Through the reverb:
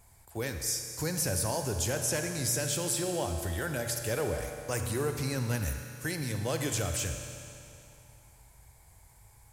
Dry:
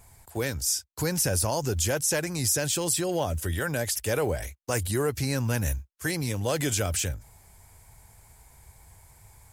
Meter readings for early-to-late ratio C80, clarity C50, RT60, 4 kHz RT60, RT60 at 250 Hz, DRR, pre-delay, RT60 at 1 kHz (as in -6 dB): 6.5 dB, 5.5 dB, 2.7 s, 2.6 s, 2.7 s, 5.0 dB, 38 ms, 2.7 s